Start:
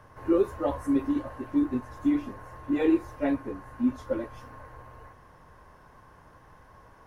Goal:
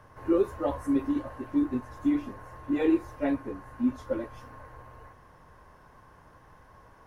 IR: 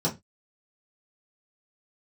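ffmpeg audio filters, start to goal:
-af "volume=0.891"

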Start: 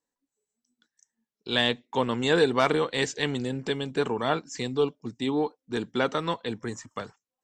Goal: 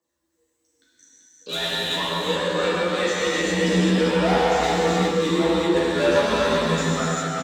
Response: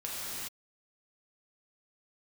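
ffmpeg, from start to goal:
-filter_complex "[0:a]asettb=1/sr,asplit=3[s0][s1][s2];[s0]atrim=end=1.554[s3];[s1]atrim=start=1.55:end=3.25,asetpts=PTS-STARTPTS,afade=t=in:d=0.004:c=qsin,afade=t=out:st=1.696:d=0.004:c=qsin,acompressor=threshold=0.02:ratio=3[s4];[s2]atrim=start=3.246[s5];[s3][s4]acrossfade=d=0.004:c1=hsin:c2=qsin[s6];[s6][s5]acrossfade=d=0.004:c1=qsin:c2=hsin,asettb=1/sr,asplit=3[s7][s8][s9];[s7]atrim=end=3.794[s10];[s8]atrim=start=3.79:end=4.56,asetpts=PTS-STARTPTS,afade=t=in:d=0.004:c=qsin,afade=t=out:st=0.766:d=0.004:c=qsin,bass=f=250:g=-12,treble=f=4000:g=-8[s11];[s9]atrim=start=4.556[s12];[s10][s11]acrossfade=d=0.004:c1=hsin:c2=qsin[s13];[s13][s12]acrossfade=d=0.004:c1=qsin:c2=hsin,aphaser=in_gain=1:out_gain=1:delay=2.5:decay=0.64:speed=1.1:type=triangular,asoftclip=type=tanh:threshold=0.0501,afreqshift=51,asplit=2[s14][s15];[s15]adelay=12,volume=0.75[s16];[s14][s16]amix=inputs=2:normalize=0,aecho=1:1:386:0.631[s17];[1:a]atrim=start_sample=2205[s18];[s17][s18]afir=irnorm=-1:irlink=0,volume=1.68"

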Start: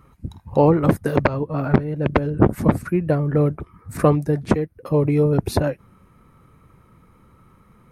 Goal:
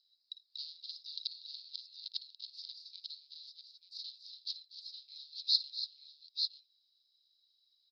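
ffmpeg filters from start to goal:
-af "aeval=exprs='clip(val(0),-1,0.119)':c=same,asuperpass=centerf=4400:order=8:qfactor=3.2,aecho=1:1:57|241|285|883|895:0.158|0.15|0.282|0.237|0.473,volume=2.66"

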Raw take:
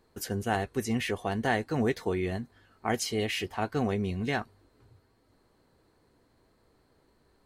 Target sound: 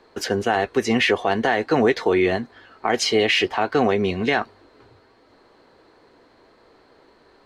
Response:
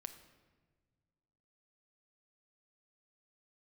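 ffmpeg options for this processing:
-filter_complex "[0:a]acrossover=split=280 5600:gain=0.2 1 0.0891[s0][s1][s2];[s0][s1][s2]amix=inputs=3:normalize=0,acontrast=90,alimiter=limit=0.15:level=0:latency=1:release=81,volume=2.51"

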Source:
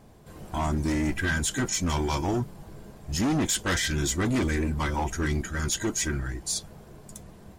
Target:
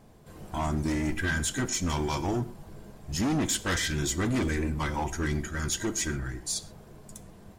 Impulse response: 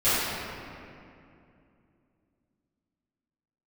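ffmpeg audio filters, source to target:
-filter_complex "[0:a]asplit=2[s0][s1];[1:a]atrim=start_sample=2205,atrim=end_sample=6174[s2];[s1][s2]afir=irnorm=-1:irlink=0,volume=0.0398[s3];[s0][s3]amix=inputs=2:normalize=0,volume=0.75"

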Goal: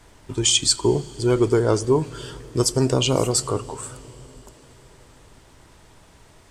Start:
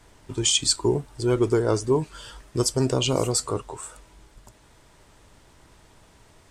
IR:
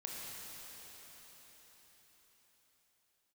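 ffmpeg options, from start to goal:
-filter_complex "[0:a]asplit=2[s0][s1];[1:a]atrim=start_sample=2205,lowshelf=f=250:g=10,adelay=86[s2];[s1][s2]afir=irnorm=-1:irlink=0,volume=0.0944[s3];[s0][s3]amix=inputs=2:normalize=0,volume=1.41"

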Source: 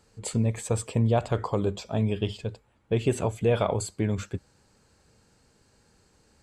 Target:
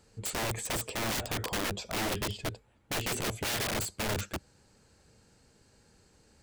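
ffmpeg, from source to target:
-af "aeval=exprs='(mod(21.1*val(0)+1,2)-1)/21.1':c=same,equalizer=f=1100:t=o:w=0.72:g=-3"

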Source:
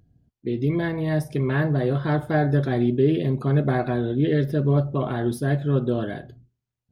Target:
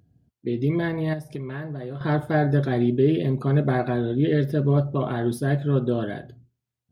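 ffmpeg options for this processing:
-filter_complex "[0:a]highpass=70,asettb=1/sr,asplit=3[s0][s1][s2];[s0]atrim=end=1.134[s3];[s1]atrim=start=1.13:end=2.01,asetpts=PTS-STARTPTS,afade=t=in:d=0.004:c=qsin,afade=t=out:st=0.876:d=0.004:c=qsin,acompressor=threshold=0.0355:ratio=12[s4];[s2]atrim=start=2.006[s5];[s3][s4]acrossfade=d=0.004:c1=hsin:c2=qsin[s6];[s6][s5]acrossfade=d=0.004:c1=qsin:c2=hsin"

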